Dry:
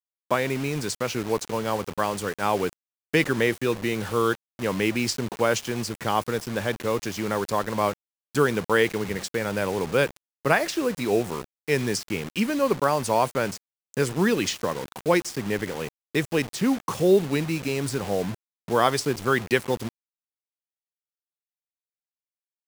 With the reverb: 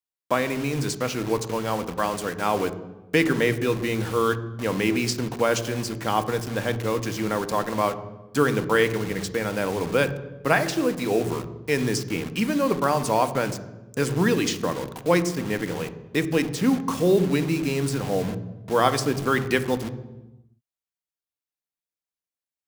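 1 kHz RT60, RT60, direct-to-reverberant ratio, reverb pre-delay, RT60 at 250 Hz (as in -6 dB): 0.95 s, 1.1 s, 10.0 dB, 3 ms, 1.4 s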